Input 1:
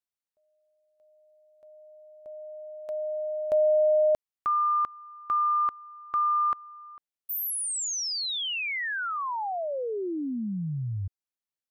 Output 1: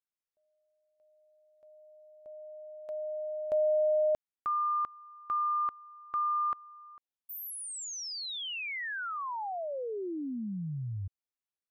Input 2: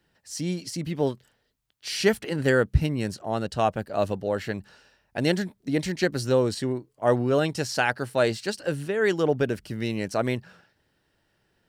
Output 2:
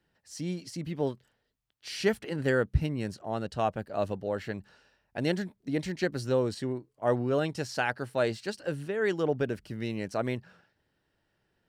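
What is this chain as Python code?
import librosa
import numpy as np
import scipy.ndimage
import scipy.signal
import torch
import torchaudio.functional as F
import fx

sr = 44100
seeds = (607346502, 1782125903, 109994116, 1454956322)

y = fx.high_shelf(x, sr, hz=4400.0, db=-5.5)
y = F.gain(torch.from_numpy(y), -5.0).numpy()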